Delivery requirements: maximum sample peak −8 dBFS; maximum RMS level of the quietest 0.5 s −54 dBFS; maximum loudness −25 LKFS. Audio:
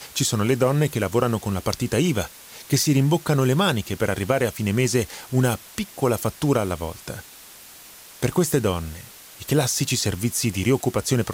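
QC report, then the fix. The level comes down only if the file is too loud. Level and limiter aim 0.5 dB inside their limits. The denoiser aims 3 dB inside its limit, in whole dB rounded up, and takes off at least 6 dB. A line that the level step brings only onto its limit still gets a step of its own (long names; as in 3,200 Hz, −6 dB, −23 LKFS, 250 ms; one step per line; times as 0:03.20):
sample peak −6.0 dBFS: out of spec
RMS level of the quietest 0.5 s −45 dBFS: out of spec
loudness −22.5 LKFS: out of spec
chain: broadband denoise 9 dB, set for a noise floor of −45 dBFS
level −3 dB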